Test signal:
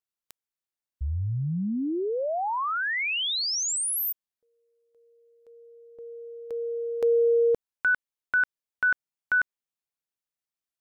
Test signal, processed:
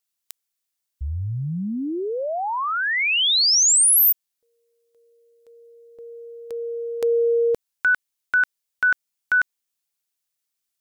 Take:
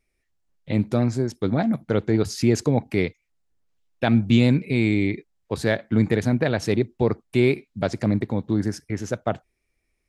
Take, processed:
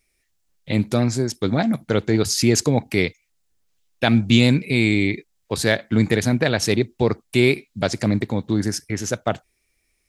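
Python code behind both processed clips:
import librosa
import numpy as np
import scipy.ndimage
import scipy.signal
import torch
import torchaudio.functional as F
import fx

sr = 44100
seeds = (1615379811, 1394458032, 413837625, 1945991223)

y = fx.high_shelf(x, sr, hz=2500.0, db=11.5)
y = y * librosa.db_to_amplitude(1.5)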